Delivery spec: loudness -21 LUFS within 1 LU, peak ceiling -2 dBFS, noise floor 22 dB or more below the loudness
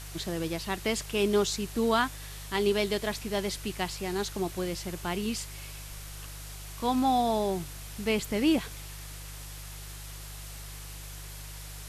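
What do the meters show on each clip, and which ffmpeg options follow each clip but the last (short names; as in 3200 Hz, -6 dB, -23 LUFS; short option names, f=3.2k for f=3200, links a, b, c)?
hum 50 Hz; harmonics up to 150 Hz; hum level -41 dBFS; noise floor -42 dBFS; noise floor target -52 dBFS; loudness -30.0 LUFS; peak -13.0 dBFS; loudness target -21.0 LUFS
-> -af "bandreject=f=50:t=h:w=4,bandreject=f=100:t=h:w=4,bandreject=f=150:t=h:w=4"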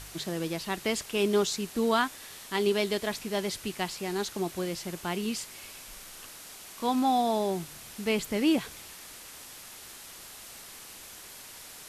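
hum none; noise floor -47 dBFS; noise floor target -52 dBFS
-> -af "afftdn=nr=6:nf=-47"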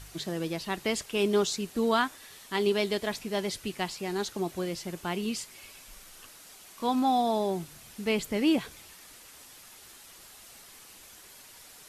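noise floor -52 dBFS; loudness -30.0 LUFS; peak -13.5 dBFS; loudness target -21.0 LUFS
-> -af "volume=9dB"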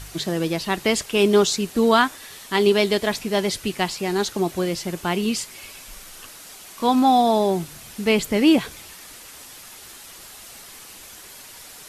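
loudness -21.0 LUFS; peak -4.5 dBFS; noise floor -43 dBFS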